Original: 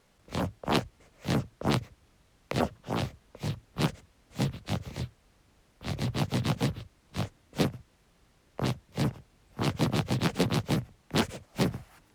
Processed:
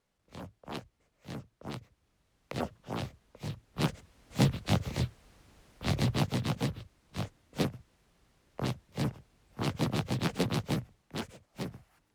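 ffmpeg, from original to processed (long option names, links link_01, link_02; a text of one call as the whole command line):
ffmpeg -i in.wav -af "volume=4dB,afade=type=in:start_time=1.75:duration=1.08:silence=0.375837,afade=type=in:start_time=3.64:duration=0.81:silence=0.334965,afade=type=out:start_time=5.9:duration=0.5:silence=0.421697,afade=type=out:start_time=10.72:duration=0.44:silence=0.421697" out.wav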